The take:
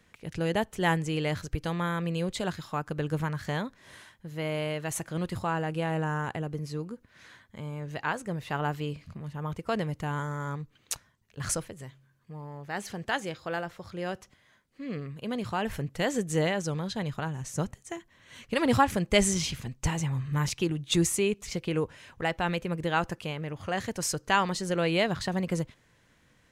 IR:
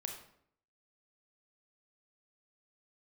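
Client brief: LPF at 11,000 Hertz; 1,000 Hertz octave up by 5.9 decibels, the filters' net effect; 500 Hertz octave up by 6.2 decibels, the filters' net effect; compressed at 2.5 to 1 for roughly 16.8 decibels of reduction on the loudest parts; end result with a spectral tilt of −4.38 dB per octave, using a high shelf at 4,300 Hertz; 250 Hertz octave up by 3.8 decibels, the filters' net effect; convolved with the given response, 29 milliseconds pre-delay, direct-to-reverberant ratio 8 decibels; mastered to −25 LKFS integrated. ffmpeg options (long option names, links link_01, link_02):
-filter_complex "[0:a]lowpass=11000,equalizer=frequency=250:width_type=o:gain=4,equalizer=frequency=500:width_type=o:gain=5,equalizer=frequency=1000:width_type=o:gain=5,highshelf=frequency=4300:gain=9,acompressor=threshold=-38dB:ratio=2.5,asplit=2[link_01][link_02];[1:a]atrim=start_sample=2205,adelay=29[link_03];[link_02][link_03]afir=irnorm=-1:irlink=0,volume=-7dB[link_04];[link_01][link_04]amix=inputs=2:normalize=0,volume=12dB"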